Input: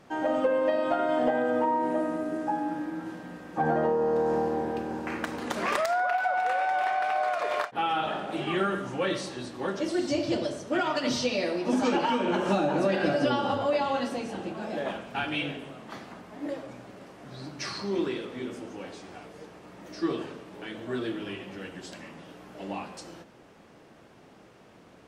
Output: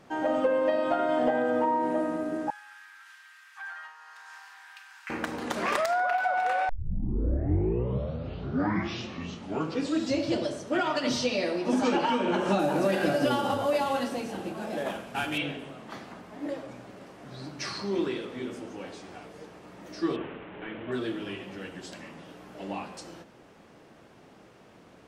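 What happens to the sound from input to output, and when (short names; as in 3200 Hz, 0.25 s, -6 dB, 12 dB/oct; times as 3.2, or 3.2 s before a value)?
2.5–5.1 inverse Chebyshev high-pass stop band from 550 Hz, stop band 50 dB
6.69 tape start 3.66 s
12.59–15.38 CVSD 64 kbps
20.16–20.92 delta modulation 16 kbps, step -38.5 dBFS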